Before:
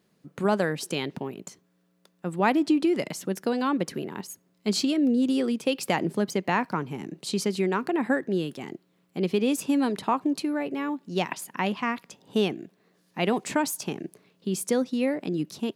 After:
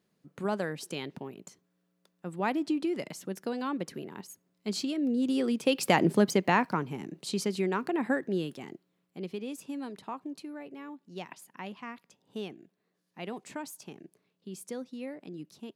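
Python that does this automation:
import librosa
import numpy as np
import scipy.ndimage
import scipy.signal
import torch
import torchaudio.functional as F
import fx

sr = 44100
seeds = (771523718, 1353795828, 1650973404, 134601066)

y = fx.gain(x, sr, db=fx.line((4.95, -7.5), (6.1, 3.5), (7.1, -4.0), (8.46, -4.0), (9.46, -14.0)))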